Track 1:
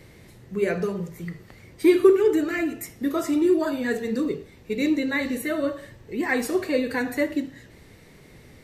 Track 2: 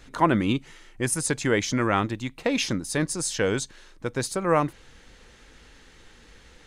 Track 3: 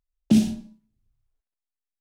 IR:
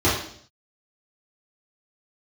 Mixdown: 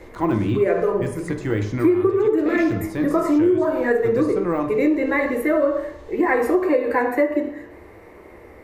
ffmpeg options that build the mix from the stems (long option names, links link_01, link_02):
-filter_complex "[0:a]equalizer=frequency=125:width_type=o:width=1:gain=-11,equalizer=frequency=500:width_type=o:width=1:gain=9,equalizer=frequency=1000:width_type=o:width=1:gain=11,equalizer=frequency=2000:width_type=o:width=1:gain=4,equalizer=frequency=4000:width_type=o:width=1:gain=-10,equalizer=frequency=8000:width_type=o:width=1:gain=-6,volume=-1.5dB,asplit=2[link_01][link_02];[link_02]volume=-22dB[link_03];[1:a]deesser=0.95,lowshelf=frequency=130:gain=7.5,volume=-4.5dB,asplit=2[link_04][link_05];[link_05]volume=-22dB[link_06];[2:a]asoftclip=type=tanh:threshold=-16dB,volume=-15.5dB[link_07];[3:a]atrim=start_sample=2205[link_08];[link_03][link_06]amix=inputs=2:normalize=0[link_09];[link_09][link_08]afir=irnorm=-1:irlink=0[link_10];[link_01][link_04][link_07][link_10]amix=inputs=4:normalize=0,acompressor=threshold=-14dB:ratio=12"